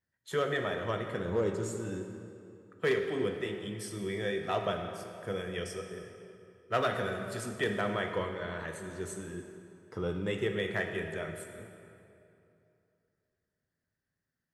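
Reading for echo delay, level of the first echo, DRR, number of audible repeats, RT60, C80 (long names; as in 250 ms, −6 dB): no echo audible, no echo audible, 4.5 dB, no echo audible, 2.8 s, 7.0 dB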